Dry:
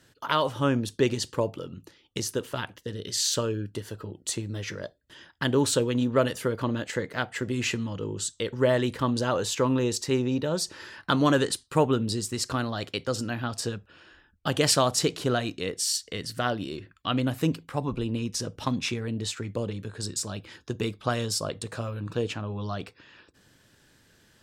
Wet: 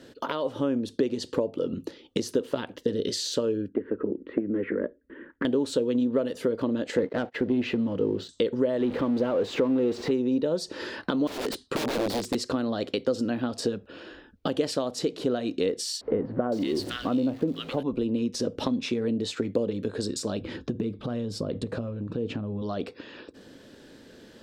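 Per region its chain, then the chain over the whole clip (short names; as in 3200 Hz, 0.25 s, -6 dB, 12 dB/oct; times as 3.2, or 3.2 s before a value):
3.68–5.45 steep low-pass 2000 Hz + fixed phaser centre 300 Hz, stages 4 + Doppler distortion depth 0.16 ms
6.98–8.29 air absorption 250 m + sample leveller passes 2 + gate -38 dBFS, range -18 dB
8.8–10.11 zero-crossing step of -27 dBFS + tone controls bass -1 dB, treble -15 dB
11.27–12.35 high shelf 9700 Hz -7 dB + wrapped overs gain 24.5 dB
16.01–17.83 zero-crossing step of -37.5 dBFS + bands offset in time lows, highs 0.51 s, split 1500 Hz
20.41–22.62 tone controls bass +12 dB, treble -7 dB + compressor, threshold -25 dBFS
whole clip: high shelf 4500 Hz -6.5 dB; compressor 16:1, threshold -37 dBFS; graphic EQ 125/250/500/4000 Hz -4/+11/+11/+6 dB; gain +4.5 dB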